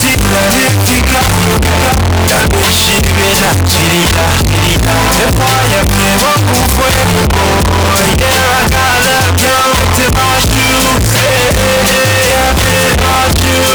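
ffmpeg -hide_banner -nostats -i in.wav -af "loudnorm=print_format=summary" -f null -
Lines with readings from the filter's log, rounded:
Input Integrated:     -8.4 LUFS
Input True Peak:      -4.1 dBTP
Input LRA:             0.6 LU
Input Threshold:     -18.4 LUFS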